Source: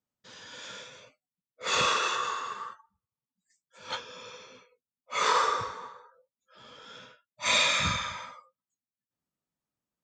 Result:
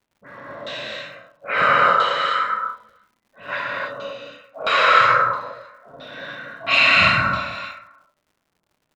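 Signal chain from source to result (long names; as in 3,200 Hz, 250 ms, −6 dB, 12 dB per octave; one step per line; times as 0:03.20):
in parallel at +1.5 dB: downward compressor, threshold −39 dBFS, peak gain reduction 17 dB
on the sum: all-pass dispersion highs, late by 107 ms, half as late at 2,700 Hz
on a send: single-tap delay 340 ms −20 dB
on the sum: change of speed 1.12×
auto-filter low-pass saw down 1.5 Hz 540–3,700 Hz
reverb whose tail is shaped and stops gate 340 ms flat, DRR −5 dB
surface crackle 170 per second −48 dBFS
one half of a high-frequency compander decoder only
level +1.5 dB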